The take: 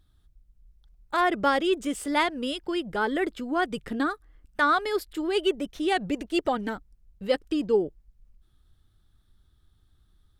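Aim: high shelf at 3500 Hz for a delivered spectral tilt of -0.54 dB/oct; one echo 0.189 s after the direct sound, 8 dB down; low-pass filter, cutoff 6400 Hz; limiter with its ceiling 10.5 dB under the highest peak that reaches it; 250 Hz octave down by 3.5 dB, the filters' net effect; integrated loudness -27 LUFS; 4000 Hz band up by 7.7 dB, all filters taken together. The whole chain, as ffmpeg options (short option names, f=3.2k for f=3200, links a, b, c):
-af "lowpass=6.4k,equalizer=f=250:t=o:g=-5,highshelf=f=3.5k:g=7.5,equalizer=f=4k:t=o:g=6,alimiter=limit=-17dB:level=0:latency=1,aecho=1:1:189:0.398,volume=1.5dB"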